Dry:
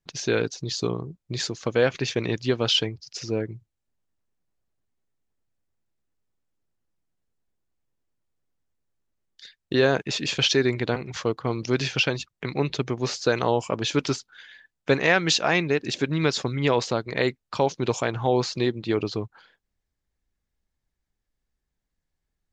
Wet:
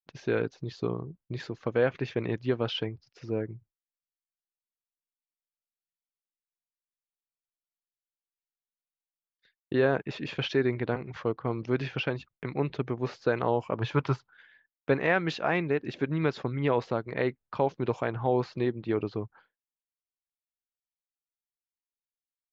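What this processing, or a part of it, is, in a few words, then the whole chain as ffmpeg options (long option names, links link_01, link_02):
hearing-loss simulation: -filter_complex "[0:a]lowpass=2000,agate=range=-33dB:threshold=-46dB:ratio=3:detection=peak,asettb=1/sr,asplit=3[link_01][link_02][link_03];[link_01]atrim=end=13.784[link_04];[link_02]atrim=start=13.78:end=14.3,asetpts=PTS-STARTPTS,afade=type=in:duration=0.004:curve=qsin,afade=type=out:start_time=0.516:duration=0.004:curve=qsin,equalizer=frequency=125:width_type=o:width=1:gain=9,equalizer=frequency=250:width_type=o:width=1:gain=-6,equalizer=frequency=1000:width_type=o:width=1:gain=9[link_05];[link_03]atrim=start=14.296[link_06];[link_04][link_05]acrossfade=duration=0.004:curve1=hsin:curve2=qsin[link_07];[link_07][link_06]acrossfade=duration=0.004:curve1=qsin:curve2=hsin,volume=-4dB"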